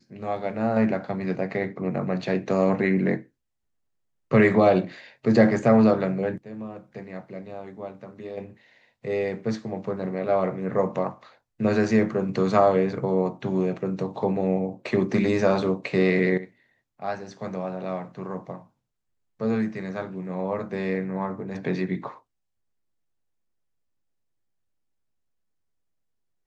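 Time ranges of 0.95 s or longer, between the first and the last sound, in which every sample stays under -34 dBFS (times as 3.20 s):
3.20–4.31 s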